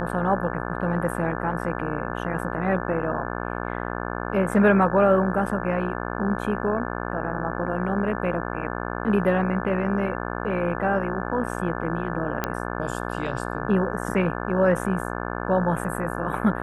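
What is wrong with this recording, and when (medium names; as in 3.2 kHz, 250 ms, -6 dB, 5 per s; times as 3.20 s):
buzz 60 Hz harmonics 29 -30 dBFS
12.44 s: pop -9 dBFS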